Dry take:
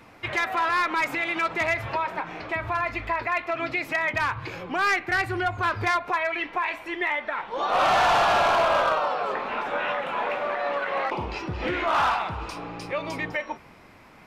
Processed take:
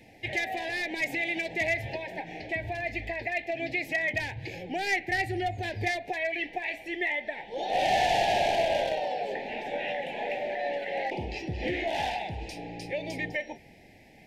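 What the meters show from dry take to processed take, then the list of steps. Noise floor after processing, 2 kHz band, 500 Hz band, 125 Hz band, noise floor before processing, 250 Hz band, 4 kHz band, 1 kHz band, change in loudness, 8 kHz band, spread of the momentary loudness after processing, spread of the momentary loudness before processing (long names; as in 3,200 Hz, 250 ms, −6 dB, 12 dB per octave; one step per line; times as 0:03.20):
−54 dBFS, −4.5 dB, −3.0 dB, −2.0 dB, −50 dBFS, −2.5 dB, −2.5 dB, −7.5 dB, −5.0 dB, −2.0 dB, 10 LU, 11 LU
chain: elliptic band-stop filter 810–1,800 Hz, stop band 70 dB
level −2 dB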